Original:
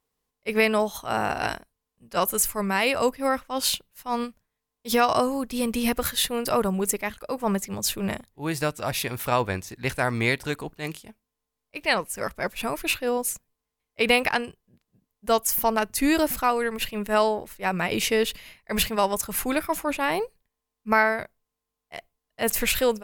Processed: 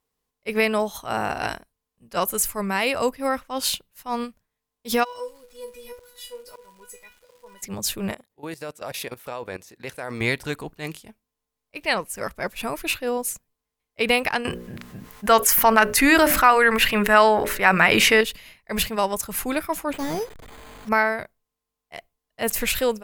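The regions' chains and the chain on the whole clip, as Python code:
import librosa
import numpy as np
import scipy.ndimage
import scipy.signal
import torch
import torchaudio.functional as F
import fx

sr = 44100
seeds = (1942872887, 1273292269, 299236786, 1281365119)

y = fx.comb_fb(x, sr, f0_hz=490.0, decay_s=0.25, harmonics='all', damping=0.0, mix_pct=100, at=(5.03, 7.61), fade=0.02)
y = fx.auto_swell(y, sr, attack_ms=238.0, at=(5.03, 7.61), fade=0.02)
y = fx.dmg_crackle(y, sr, seeds[0], per_s=540.0, level_db=-47.0, at=(5.03, 7.61), fade=0.02)
y = fx.chain(y, sr, fx.highpass(hz=230.0, slope=6),
    fx.peak_eq(hz=500.0, db=6.0, octaves=0.61),
    fx.level_steps(step_db=16), at=(8.11, 10.21))
y = fx.chain(y, sr, fx.peak_eq(hz=1600.0, db=10.5, octaves=1.7),
    fx.hum_notches(base_hz=60, count=10),
    fx.env_flatten(amount_pct=50), at=(14.45, 18.21))
y = fx.chain(y, sr, fx.delta_mod(bps=16000, step_db=-36.5),
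    fx.resample_bad(factor=8, down='filtered', up='hold'), at=(19.93, 20.89))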